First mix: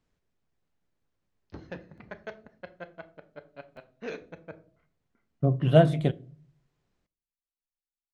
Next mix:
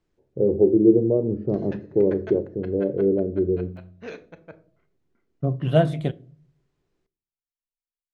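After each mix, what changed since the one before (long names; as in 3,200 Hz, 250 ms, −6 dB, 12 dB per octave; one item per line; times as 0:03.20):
first voice: unmuted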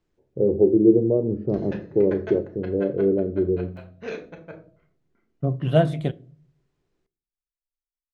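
background: send +9.5 dB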